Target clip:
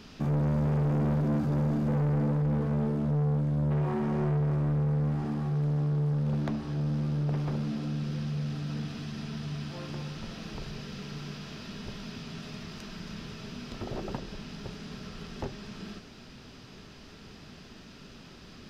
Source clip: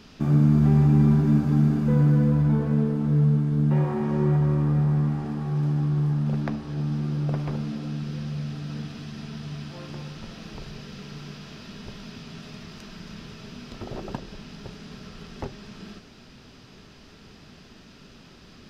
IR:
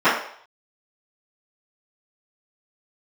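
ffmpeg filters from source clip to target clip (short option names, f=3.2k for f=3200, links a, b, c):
-af "asoftclip=type=tanh:threshold=-24.5dB"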